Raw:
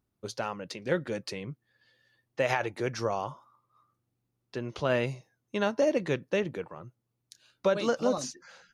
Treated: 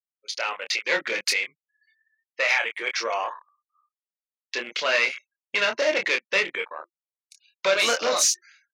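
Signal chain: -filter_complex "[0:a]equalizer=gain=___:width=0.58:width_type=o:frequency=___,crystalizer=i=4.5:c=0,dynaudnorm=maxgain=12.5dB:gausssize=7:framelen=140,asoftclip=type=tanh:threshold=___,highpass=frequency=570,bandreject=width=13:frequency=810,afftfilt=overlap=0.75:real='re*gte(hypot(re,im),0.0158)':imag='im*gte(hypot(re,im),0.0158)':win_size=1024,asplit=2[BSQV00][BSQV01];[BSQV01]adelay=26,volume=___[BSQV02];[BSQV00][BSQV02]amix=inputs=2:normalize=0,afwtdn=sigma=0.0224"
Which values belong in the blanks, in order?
12, 2200, -16dB, -5dB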